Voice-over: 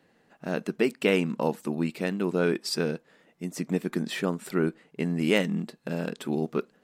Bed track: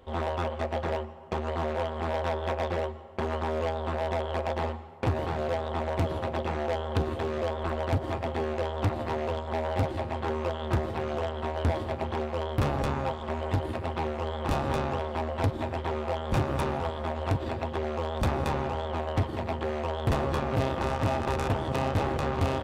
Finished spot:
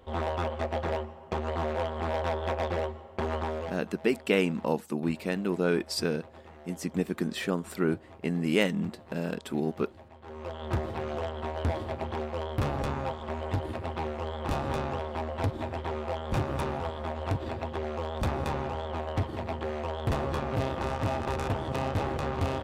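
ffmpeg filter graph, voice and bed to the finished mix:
-filter_complex "[0:a]adelay=3250,volume=0.841[s0];[1:a]volume=6.68,afade=t=out:st=3.39:d=0.44:silence=0.112202,afade=t=in:st=10.22:d=0.54:silence=0.141254[s1];[s0][s1]amix=inputs=2:normalize=0"

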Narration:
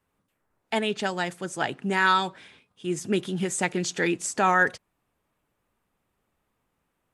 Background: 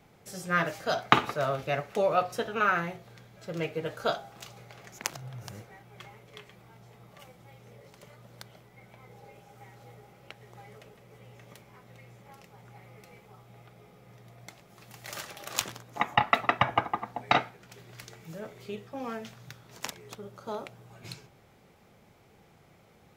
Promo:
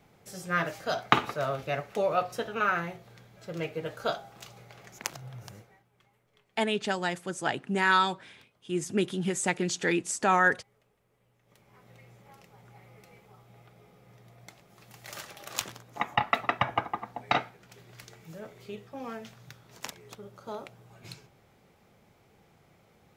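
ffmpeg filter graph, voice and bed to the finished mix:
-filter_complex "[0:a]adelay=5850,volume=0.794[s0];[1:a]volume=5.62,afade=t=out:st=5.37:d=0.53:silence=0.133352,afade=t=in:st=11.43:d=0.44:silence=0.149624[s1];[s0][s1]amix=inputs=2:normalize=0"

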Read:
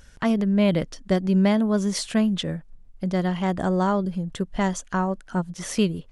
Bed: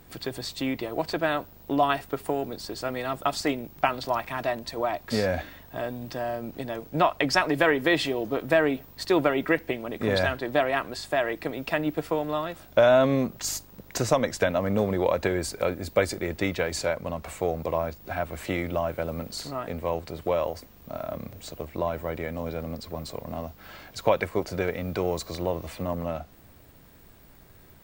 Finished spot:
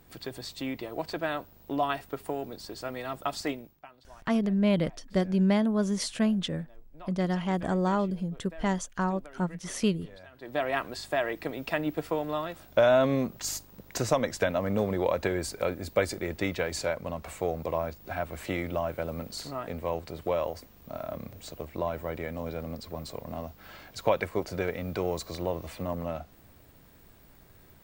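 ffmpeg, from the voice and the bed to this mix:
-filter_complex "[0:a]adelay=4050,volume=0.596[s0];[1:a]volume=7.5,afade=t=out:st=3.5:d=0.3:silence=0.0944061,afade=t=in:st=10.32:d=0.41:silence=0.0707946[s1];[s0][s1]amix=inputs=2:normalize=0"

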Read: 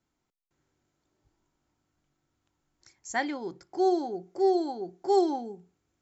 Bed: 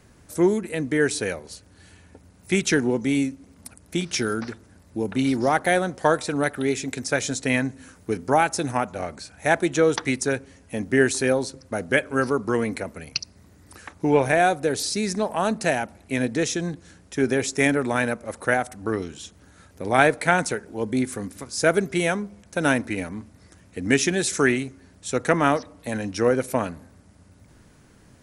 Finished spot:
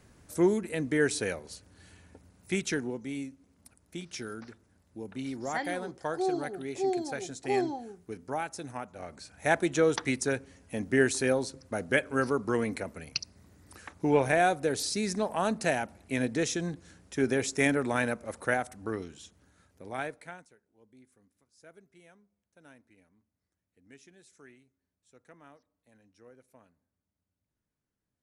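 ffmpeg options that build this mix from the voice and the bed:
-filter_complex "[0:a]adelay=2400,volume=0.531[s0];[1:a]volume=1.58,afade=t=out:st=2.07:d=0.94:silence=0.334965,afade=t=in:st=8.94:d=0.5:silence=0.354813,afade=t=out:st=18.22:d=2.25:silence=0.0334965[s1];[s0][s1]amix=inputs=2:normalize=0"

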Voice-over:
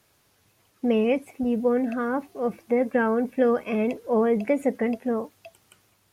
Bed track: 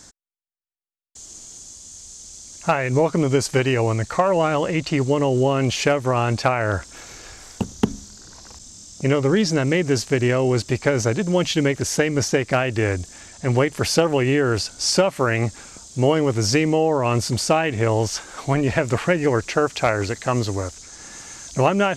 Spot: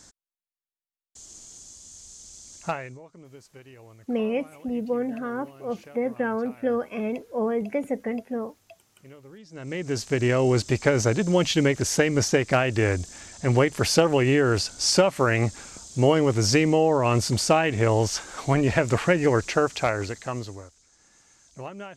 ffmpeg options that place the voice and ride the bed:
-filter_complex "[0:a]adelay=3250,volume=0.631[s0];[1:a]volume=12.6,afade=t=out:st=2.54:d=0.44:silence=0.0668344,afade=t=in:st=9.5:d=0.93:silence=0.0421697,afade=t=out:st=19.45:d=1.25:silence=0.11885[s1];[s0][s1]amix=inputs=2:normalize=0"

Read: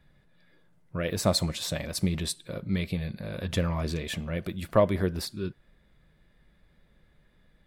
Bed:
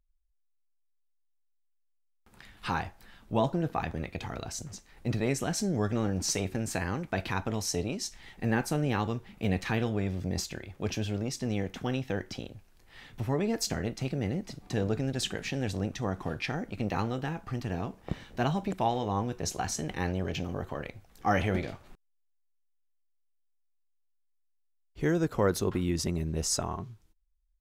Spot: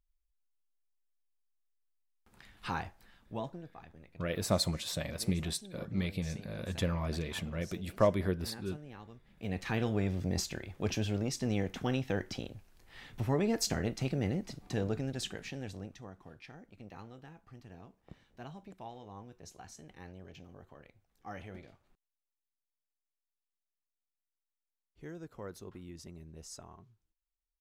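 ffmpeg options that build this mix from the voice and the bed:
-filter_complex "[0:a]adelay=3250,volume=0.562[s0];[1:a]volume=5.31,afade=t=out:st=2.85:d=0.84:silence=0.16788,afade=t=in:st=9.24:d=0.72:silence=0.105925,afade=t=out:st=14.18:d=1.96:silence=0.133352[s1];[s0][s1]amix=inputs=2:normalize=0"

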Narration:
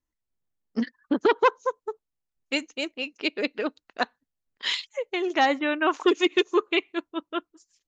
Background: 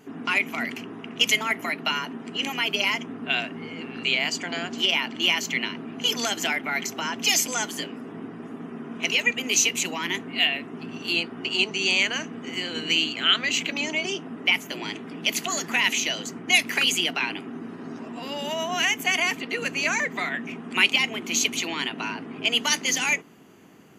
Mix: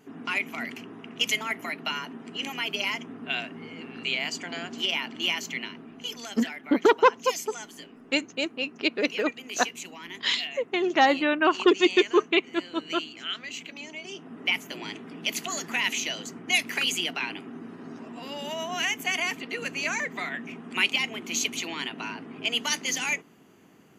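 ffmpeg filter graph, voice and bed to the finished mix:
-filter_complex "[0:a]adelay=5600,volume=1.19[s0];[1:a]volume=1.5,afade=t=out:st=5.26:d=0.96:silence=0.398107,afade=t=in:st=14.03:d=0.42:silence=0.375837[s1];[s0][s1]amix=inputs=2:normalize=0"

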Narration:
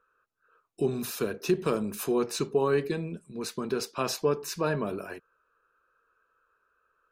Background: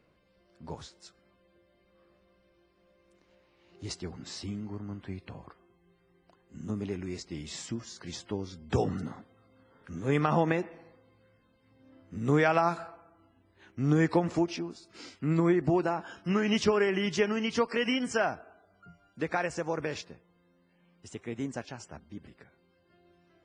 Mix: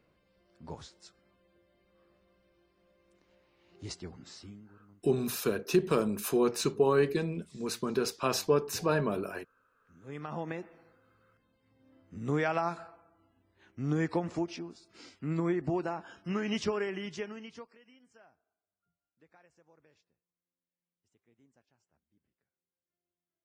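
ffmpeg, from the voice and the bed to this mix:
-filter_complex "[0:a]adelay=4250,volume=1[s0];[1:a]volume=4.47,afade=t=out:st=3.82:d=0.94:silence=0.11885,afade=t=in:st=9.96:d=1.15:silence=0.16788,afade=t=out:st=16.59:d=1.19:silence=0.0473151[s1];[s0][s1]amix=inputs=2:normalize=0"

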